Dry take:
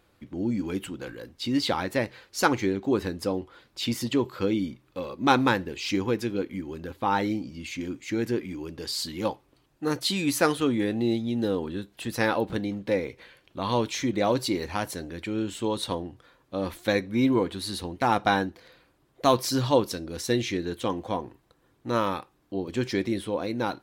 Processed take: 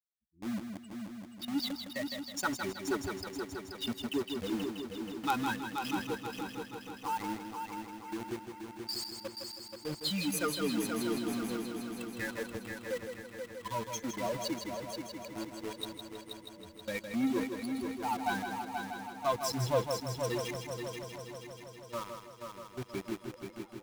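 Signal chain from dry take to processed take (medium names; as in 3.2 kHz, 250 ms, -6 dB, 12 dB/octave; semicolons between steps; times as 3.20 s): expander on every frequency bin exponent 3; band-stop 1.7 kHz; in parallel at -4.5 dB: companded quantiser 2-bit; on the sum: multi-head delay 160 ms, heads first and third, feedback 68%, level -7 dB; trim -8 dB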